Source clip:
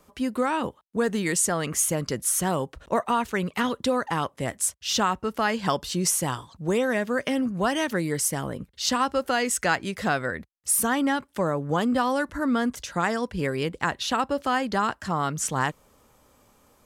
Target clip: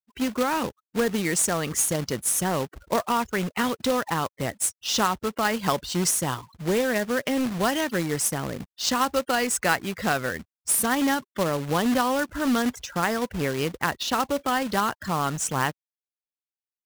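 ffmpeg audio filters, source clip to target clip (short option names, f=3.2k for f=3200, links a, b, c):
-af "afftfilt=real='re*gte(hypot(re,im),0.0126)':imag='im*gte(hypot(re,im),0.0126)':win_size=1024:overlap=0.75,acrusher=bits=2:mode=log:mix=0:aa=0.000001"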